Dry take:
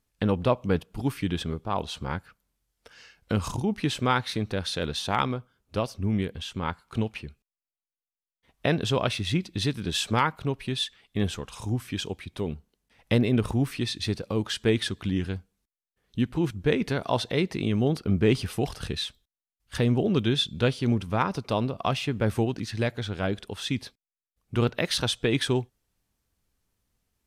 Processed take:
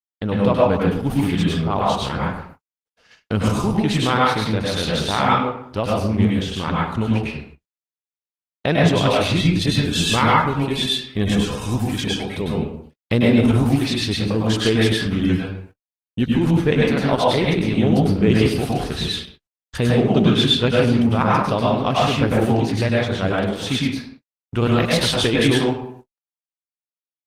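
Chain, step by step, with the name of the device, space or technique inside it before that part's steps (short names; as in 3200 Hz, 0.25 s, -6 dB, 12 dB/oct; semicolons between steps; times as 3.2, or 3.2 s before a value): speakerphone in a meeting room (reverb RT60 0.65 s, pre-delay 95 ms, DRR -4.5 dB; AGC gain up to 5 dB; gate -40 dBFS, range -58 dB; Opus 16 kbps 48000 Hz)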